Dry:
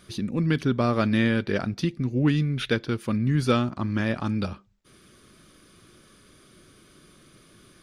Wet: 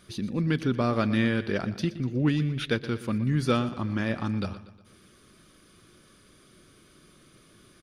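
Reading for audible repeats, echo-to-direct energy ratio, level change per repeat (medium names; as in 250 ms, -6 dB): 4, -14.0 dB, -6.0 dB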